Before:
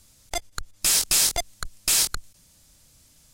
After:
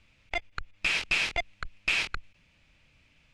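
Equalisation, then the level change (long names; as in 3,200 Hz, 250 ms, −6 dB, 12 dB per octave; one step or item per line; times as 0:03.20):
low-pass with resonance 2,500 Hz, resonance Q 4.8
−4.5 dB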